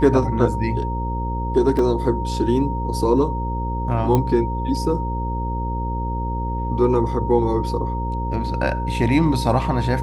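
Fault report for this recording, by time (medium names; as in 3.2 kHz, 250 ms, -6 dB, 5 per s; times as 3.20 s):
buzz 60 Hz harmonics 9 -25 dBFS
whine 930 Hz -27 dBFS
1.79 s: dropout 2.5 ms
4.15 s: pop -7 dBFS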